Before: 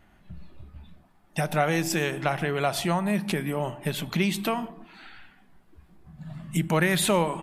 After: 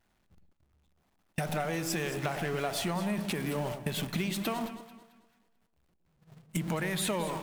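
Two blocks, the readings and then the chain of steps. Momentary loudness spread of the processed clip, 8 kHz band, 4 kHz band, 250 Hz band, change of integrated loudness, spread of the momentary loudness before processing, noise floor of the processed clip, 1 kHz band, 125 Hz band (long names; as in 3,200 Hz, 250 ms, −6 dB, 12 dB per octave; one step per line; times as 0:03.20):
7 LU, −5.5 dB, −5.5 dB, −6.5 dB, −6.5 dB, 10 LU, −73 dBFS, −8.0 dB, −6.5 dB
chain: converter with a step at zero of −30.5 dBFS
noise gate −29 dBFS, range −37 dB
downward compressor 4 to 1, threshold −31 dBFS, peak gain reduction 12 dB
delay that swaps between a low-pass and a high-pass 110 ms, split 810 Hz, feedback 57%, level −8 dB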